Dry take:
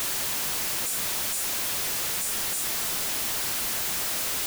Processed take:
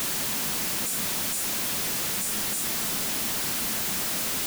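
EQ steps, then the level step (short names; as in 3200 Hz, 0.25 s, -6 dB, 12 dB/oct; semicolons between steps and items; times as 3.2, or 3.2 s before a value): bell 210 Hz +9.5 dB 1.1 oct; 0.0 dB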